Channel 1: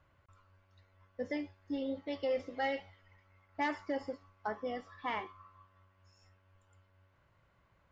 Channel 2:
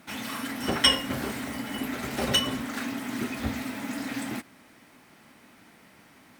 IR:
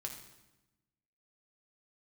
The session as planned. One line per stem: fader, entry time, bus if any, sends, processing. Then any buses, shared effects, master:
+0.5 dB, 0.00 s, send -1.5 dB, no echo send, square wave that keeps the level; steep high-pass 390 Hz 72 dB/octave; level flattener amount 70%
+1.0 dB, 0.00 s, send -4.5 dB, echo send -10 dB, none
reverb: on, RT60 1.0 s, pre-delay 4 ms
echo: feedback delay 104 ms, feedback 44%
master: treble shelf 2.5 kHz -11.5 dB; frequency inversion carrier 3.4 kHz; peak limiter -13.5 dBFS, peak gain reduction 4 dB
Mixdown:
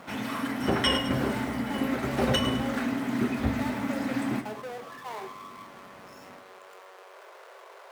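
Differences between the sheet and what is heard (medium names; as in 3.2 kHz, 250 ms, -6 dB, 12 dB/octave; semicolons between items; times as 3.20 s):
stem 1 +0.5 dB -> -10.5 dB; master: missing frequency inversion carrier 3.4 kHz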